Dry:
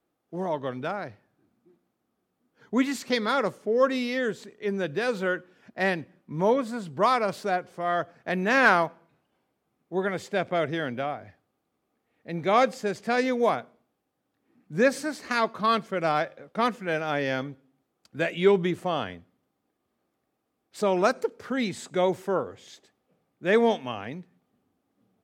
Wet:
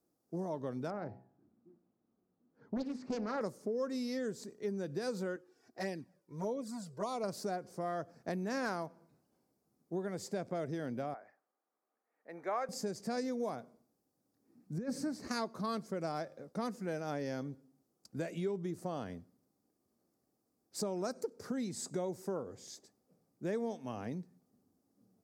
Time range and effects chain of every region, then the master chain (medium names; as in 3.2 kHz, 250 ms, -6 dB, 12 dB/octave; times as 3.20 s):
0.90–3.41 s: low-pass 2 kHz + de-hum 63.72 Hz, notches 15 + loudspeaker Doppler distortion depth 0.76 ms
5.36–7.24 s: bass shelf 220 Hz -10.5 dB + touch-sensitive flanger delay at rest 2.8 ms, full sweep at -20.5 dBFS
11.14–12.69 s: high-pass 700 Hz + resonant high shelf 2.7 kHz -13.5 dB, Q 1.5
14.78–15.28 s: tone controls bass +9 dB, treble -9 dB + compressor with a negative ratio -23 dBFS, ratio -0.5
whole clip: FFT filter 200 Hz 0 dB, 3.2 kHz -20 dB, 4.9 kHz -2 dB; compression, threshold -36 dBFS; bass shelf 200 Hz -8 dB; trim +4 dB